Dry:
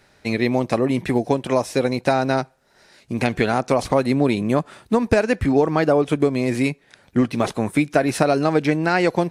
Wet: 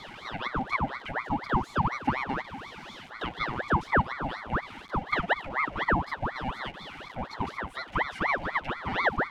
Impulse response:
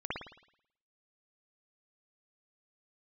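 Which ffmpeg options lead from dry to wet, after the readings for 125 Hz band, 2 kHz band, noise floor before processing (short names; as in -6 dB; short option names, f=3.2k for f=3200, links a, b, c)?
-10.5 dB, -2.5 dB, -57 dBFS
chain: -filter_complex "[0:a]aeval=exprs='val(0)+0.5*0.0708*sgn(val(0))':c=same,asplit=3[a][b][c];[a]bandpass=f=530:t=q:w=8,volume=0dB[d];[b]bandpass=f=1.84k:t=q:w=8,volume=-6dB[e];[c]bandpass=f=2.48k:t=q:w=8,volume=-9dB[f];[d][e][f]amix=inputs=3:normalize=0,aeval=exprs='val(0)*sin(2*PI*990*n/s+990*0.75/4.1*sin(2*PI*4.1*n/s))':c=same"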